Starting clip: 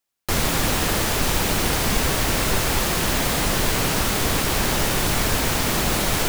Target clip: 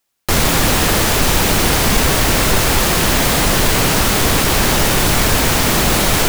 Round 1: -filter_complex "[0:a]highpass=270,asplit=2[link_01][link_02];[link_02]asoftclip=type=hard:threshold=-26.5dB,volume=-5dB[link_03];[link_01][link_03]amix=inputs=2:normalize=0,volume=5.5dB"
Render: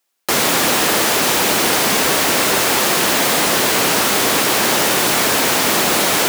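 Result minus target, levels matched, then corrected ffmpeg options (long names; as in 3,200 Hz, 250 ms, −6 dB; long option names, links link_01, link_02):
250 Hz band −3.0 dB
-filter_complex "[0:a]asplit=2[link_01][link_02];[link_02]asoftclip=type=hard:threshold=-26.5dB,volume=-5dB[link_03];[link_01][link_03]amix=inputs=2:normalize=0,volume=5.5dB"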